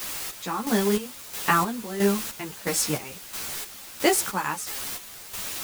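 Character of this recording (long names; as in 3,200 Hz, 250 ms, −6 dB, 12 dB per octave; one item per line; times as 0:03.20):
a quantiser's noise floor 6 bits, dither triangular
chopped level 1.5 Hz, depth 65%, duty 45%
a shimmering, thickened sound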